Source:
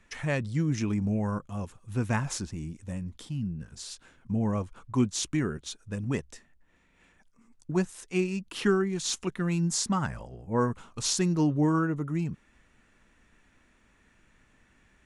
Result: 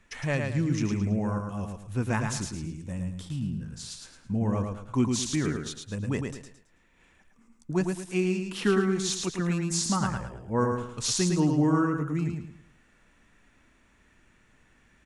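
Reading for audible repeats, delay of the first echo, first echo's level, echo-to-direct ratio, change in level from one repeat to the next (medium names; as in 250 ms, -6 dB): 4, 109 ms, -4.5 dB, -4.0 dB, -9.5 dB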